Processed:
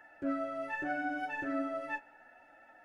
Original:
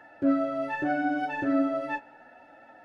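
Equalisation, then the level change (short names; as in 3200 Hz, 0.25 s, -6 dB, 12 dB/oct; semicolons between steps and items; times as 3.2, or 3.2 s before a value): graphic EQ 125/250/500/1000/4000 Hz -12/-8/-7/-6/-9 dB; 0.0 dB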